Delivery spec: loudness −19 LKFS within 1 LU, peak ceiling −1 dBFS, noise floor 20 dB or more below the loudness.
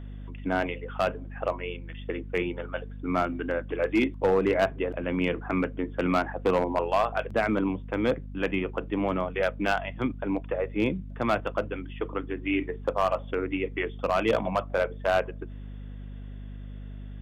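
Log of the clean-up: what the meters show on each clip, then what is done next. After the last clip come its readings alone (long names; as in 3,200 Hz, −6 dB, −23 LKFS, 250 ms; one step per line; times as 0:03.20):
share of clipped samples 0.6%; peaks flattened at −16.5 dBFS; mains hum 50 Hz; hum harmonics up to 250 Hz; level of the hum −37 dBFS; integrated loudness −28.5 LKFS; sample peak −16.5 dBFS; target loudness −19.0 LKFS
→ clipped peaks rebuilt −16.5 dBFS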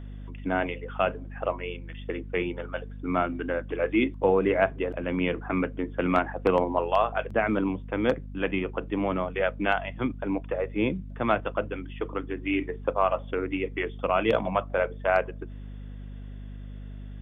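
share of clipped samples 0.0%; mains hum 50 Hz; hum harmonics up to 250 Hz; level of the hum −37 dBFS
→ mains-hum notches 50/100/150/200/250 Hz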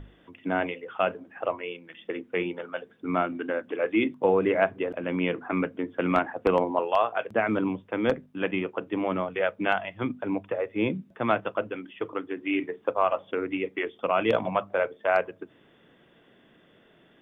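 mains hum none found; integrated loudness −28.0 LKFS; sample peak −7.5 dBFS; target loudness −19.0 LKFS
→ level +9 dB
brickwall limiter −1 dBFS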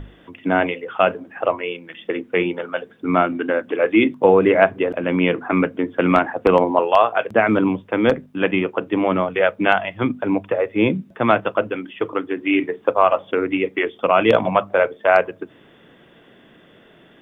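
integrated loudness −19.5 LKFS; sample peak −1.0 dBFS; background noise floor −51 dBFS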